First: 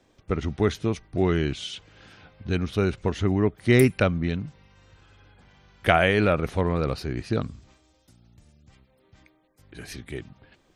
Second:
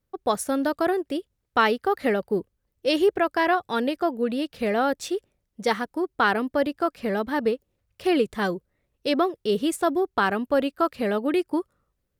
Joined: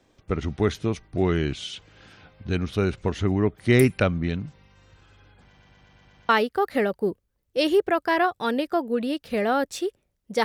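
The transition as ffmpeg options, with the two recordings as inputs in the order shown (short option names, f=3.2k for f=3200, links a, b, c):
-filter_complex "[0:a]apad=whole_dur=10.44,atrim=end=10.44,asplit=7[a][b][c][d][e][f][g];[a]atrim=end=5.572[h];[b]atrim=start=5.448:end=5.572[i];[c]atrim=start=5.448:end=5.572[j];[d]atrim=start=5.448:end=5.572[k];[e]atrim=start=5.448:end=5.572[l];[f]atrim=start=5.448:end=5.572[m];[g]atrim=start=5.448:end=5.572[n];[1:a]atrim=start=1.578:end=5.73[o];[h][i]acrossfade=d=0.004:c1=hsin:c2=hsin[p];[p][j]acrossfade=d=0.004:c1=hsin:c2=hsin[q];[q][k]acrossfade=d=0.004:c1=hsin:c2=hsin[r];[r][l]acrossfade=d=0.004:c1=hsin:c2=hsin[s];[s][m]acrossfade=d=0.004:c1=hsin:c2=hsin[t];[t][n]acrossfade=d=0.004:c1=hsin:c2=hsin[u];[u][o]acrossfade=d=0.004:c1=hsin:c2=hsin"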